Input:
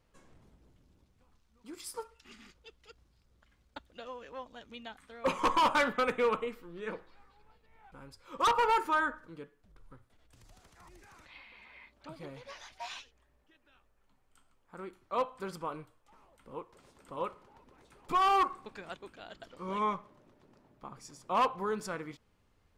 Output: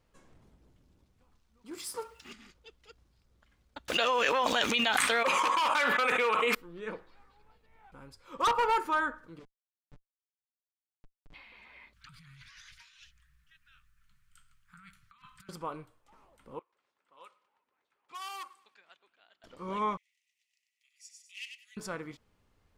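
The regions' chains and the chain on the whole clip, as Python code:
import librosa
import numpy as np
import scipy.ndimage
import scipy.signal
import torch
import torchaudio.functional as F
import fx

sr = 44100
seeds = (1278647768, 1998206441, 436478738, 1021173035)

y = fx.chain(x, sr, fx.law_mismatch(coded='mu'),
    fx.highpass(hz=76.0, slope=12), at=(1.71, 2.33))
y = fx.chain(y, sr, fx.highpass(hz=1200.0, slope=6),
    fx.peak_eq(hz=2500.0, db=3.5, octaves=0.3),
    fx.env_flatten(amount_pct=100), at=(3.88, 6.55))
y = fx.chain(y, sr, fx.schmitt(flips_db=-46.5),
    fx.air_absorb(metres=81.0),
    fx.comb(ms=6.8, depth=0.85), at=(9.39, 11.34))
y = fx.chain(y, sr, fx.ellip_bandstop(low_hz=160.0, high_hz=1400.0, order=3, stop_db=60),
    fx.over_compress(threshold_db=-56.0, ratio=-1.0), at=(11.93, 15.49))
y = fx.chain(y, sr, fx.env_lowpass(base_hz=1800.0, full_db=-27.0),
    fx.differentiator(),
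    fx.echo_feedback(ms=104, feedback_pct=52, wet_db=-24.0), at=(16.59, 19.44))
y = fx.chain(y, sr, fx.cheby_ripple_highpass(hz=1900.0, ripple_db=6),
    fx.echo_feedback(ms=95, feedback_pct=22, wet_db=-6), at=(19.97, 21.77))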